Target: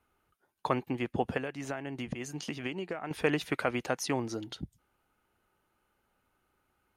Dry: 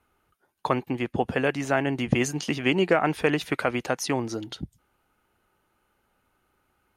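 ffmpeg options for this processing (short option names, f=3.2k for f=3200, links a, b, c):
-filter_complex "[0:a]asettb=1/sr,asplit=3[a][b][c];[a]atrim=end=1.374[d];[b]atrim=start=1.37:end=3.11,asetpts=PTS-STARTPTS,afade=t=in:d=0.004:c=qsin,afade=t=out:st=1.736:d=0.004:c=qsin,acompressor=threshold=-28dB:ratio=12[e];[c]atrim=start=3.106[f];[d][e]acrossfade=d=0.004:c1=hsin:c2=qsin[g];[g][f]acrossfade=d=0.004:c1=qsin:c2=hsin,volume=-5dB"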